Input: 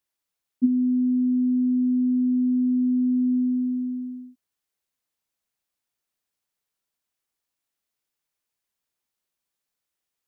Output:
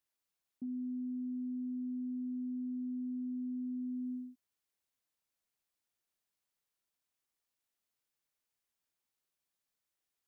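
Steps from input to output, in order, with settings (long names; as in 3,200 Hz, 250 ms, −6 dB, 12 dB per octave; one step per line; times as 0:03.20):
downward compressor, threshold −26 dBFS, peak gain reduction 10.5 dB
brickwall limiter −31 dBFS, peak gain reduction 11 dB
level −4.5 dB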